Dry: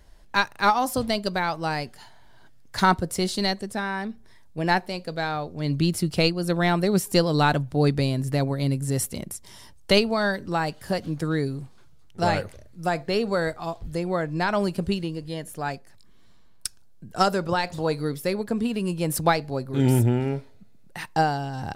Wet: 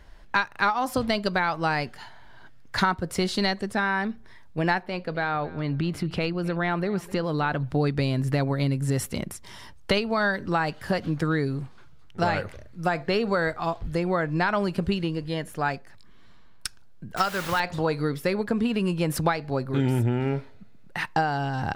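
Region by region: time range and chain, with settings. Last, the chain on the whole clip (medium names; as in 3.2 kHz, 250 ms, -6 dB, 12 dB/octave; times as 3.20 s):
4.83–7.63 s: tone controls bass -1 dB, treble -10 dB + compression 3:1, threshold -27 dBFS + feedback delay 258 ms, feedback 22%, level -20.5 dB
17.17–17.60 s: peaking EQ 310 Hz -9 dB 2.9 oct + word length cut 6-bit, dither triangular
whole clip: FFT filter 650 Hz 0 dB, 1.4 kHz +5 dB, 2.8 kHz +2 dB, 9 kHz -8 dB; compression, threshold -23 dBFS; trim +3 dB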